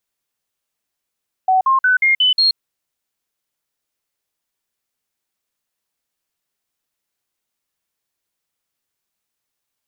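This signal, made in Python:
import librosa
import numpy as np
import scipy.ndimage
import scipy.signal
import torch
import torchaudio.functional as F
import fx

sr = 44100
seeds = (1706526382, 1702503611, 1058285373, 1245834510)

y = fx.stepped_sweep(sr, from_hz=752.0, direction='up', per_octave=2, tones=6, dwell_s=0.13, gap_s=0.05, level_db=-10.5)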